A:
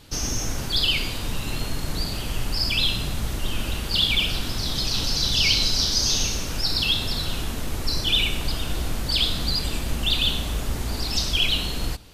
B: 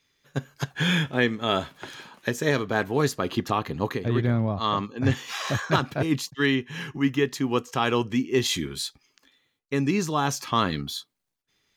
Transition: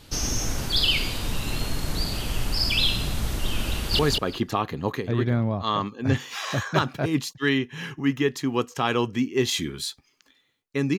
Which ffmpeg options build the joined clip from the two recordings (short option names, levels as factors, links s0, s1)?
-filter_complex "[0:a]apad=whole_dur=10.98,atrim=end=10.98,atrim=end=3.992[s0];[1:a]atrim=start=2.958:end=9.95[s1];[s0][s1]acrossfade=d=0.004:c1=hsin:c2=hsin,asplit=2[s2][s3];[s3]afade=t=in:st=3.73:d=0.01,afade=t=out:st=3.99:d=0.01,aecho=0:1:190|380|570:0.794328|0.119149|0.0178724[s4];[s2][s4]amix=inputs=2:normalize=0"